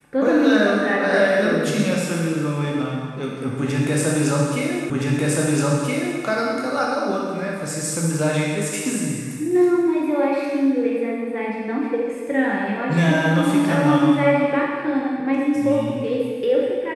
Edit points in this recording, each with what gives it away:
4.90 s: repeat of the last 1.32 s

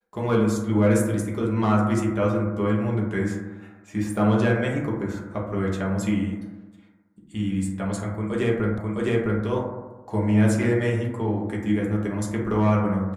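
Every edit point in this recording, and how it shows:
8.78 s: repeat of the last 0.66 s

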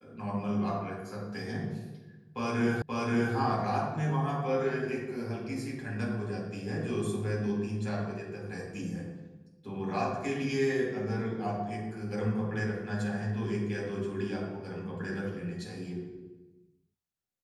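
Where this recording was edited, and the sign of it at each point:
2.82 s: repeat of the last 0.53 s

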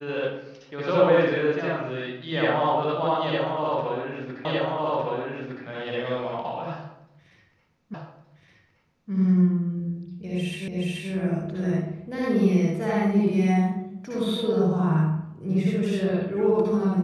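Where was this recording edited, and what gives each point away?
4.45 s: repeat of the last 1.21 s
7.94 s: repeat of the last 1.17 s
10.68 s: repeat of the last 0.43 s

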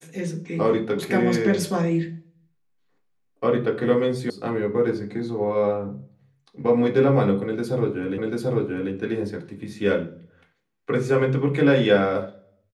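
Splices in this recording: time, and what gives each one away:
4.30 s: sound stops dead
8.18 s: repeat of the last 0.74 s

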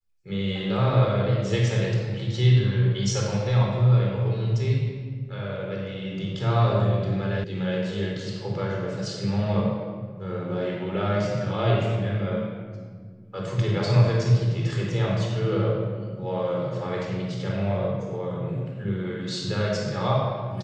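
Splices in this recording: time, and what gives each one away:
7.44 s: sound stops dead

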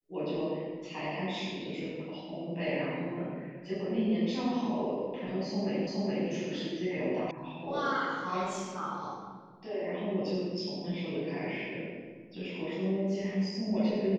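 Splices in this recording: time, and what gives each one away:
5.87 s: repeat of the last 0.42 s
7.31 s: sound stops dead

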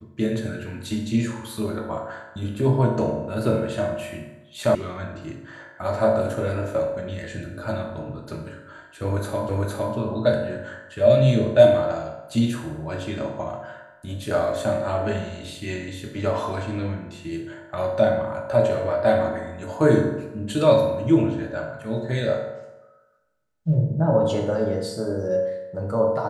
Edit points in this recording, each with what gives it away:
4.75 s: sound stops dead
9.49 s: repeat of the last 0.46 s

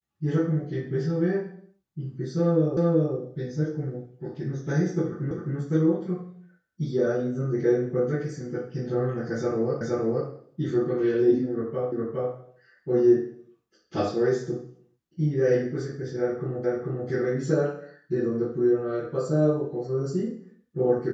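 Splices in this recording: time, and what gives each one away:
2.77 s: repeat of the last 0.38 s
5.31 s: repeat of the last 0.26 s
9.81 s: repeat of the last 0.47 s
11.92 s: repeat of the last 0.41 s
16.64 s: repeat of the last 0.44 s

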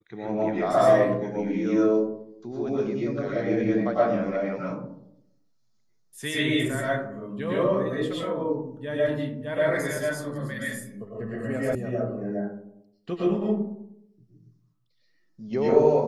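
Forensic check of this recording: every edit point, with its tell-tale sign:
11.75 s: sound stops dead

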